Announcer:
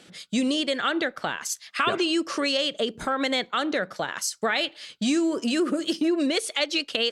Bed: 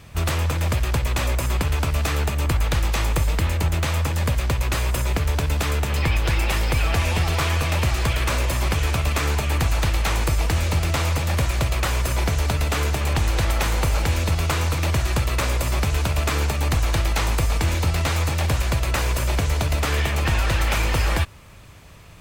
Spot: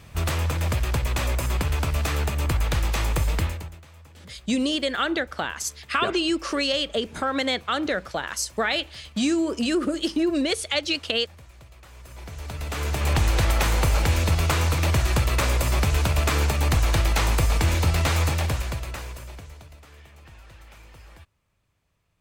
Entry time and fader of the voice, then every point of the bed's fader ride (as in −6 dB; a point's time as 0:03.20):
4.15 s, +0.5 dB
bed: 0:03.43 −2.5 dB
0:03.84 −26.5 dB
0:11.83 −26.5 dB
0:13.09 0 dB
0:18.28 0 dB
0:19.84 −27 dB